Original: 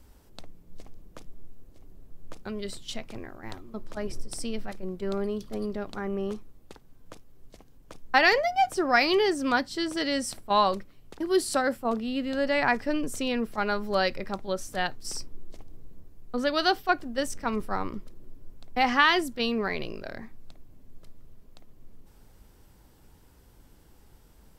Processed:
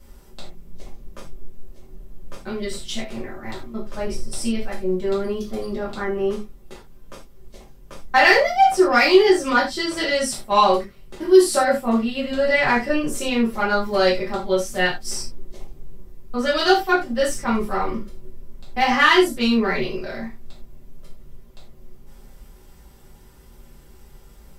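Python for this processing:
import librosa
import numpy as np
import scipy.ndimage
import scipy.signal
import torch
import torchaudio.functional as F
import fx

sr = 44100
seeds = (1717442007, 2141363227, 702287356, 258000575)

p1 = x + 0.33 * np.pad(x, (int(5.1 * sr / 1000.0), 0))[:len(x)]
p2 = 10.0 ** (-20.0 / 20.0) * np.tanh(p1 / 10.0 ** (-20.0 / 20.0))
p3 = p1 + F.gain(torch.from_numpy(p2), -3.0).numpy()
p4 = fx.rev_gated(p3, sr, seeds[0], gate_ms=120, shape='falling', drr_db=-7.5)
y = F.gain(torch.from_numpy(p4), -5.0).numpy()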